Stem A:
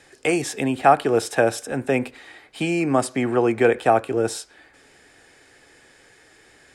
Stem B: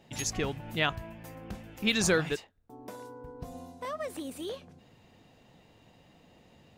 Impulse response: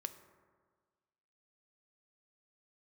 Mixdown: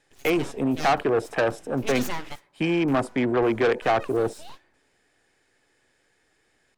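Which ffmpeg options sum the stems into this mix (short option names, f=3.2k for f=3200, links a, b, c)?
-filter_complex "[0:a]afwtdn=0.0355,asoftclip=type=tanh:threshold=-18dB,volume=1.5dB,asplit=2[a][b];[1:a]aeval=exprs='abs(val(0))':c=same,volume=-4.5dB,asplit=2[c][d];[d]volume=-12.5dB[e];[b]apad=whole_len=298855[f];[c][f]sidechaingate=range=-19dB:threshold=-58dB:ratio=16:detection=peak[g];[2:a]atrim=start_sample=2205[h];[e][h]afir=irnorm=-1:irlink=0[i];[a][g][i]amix=inputs=3:normalize=0"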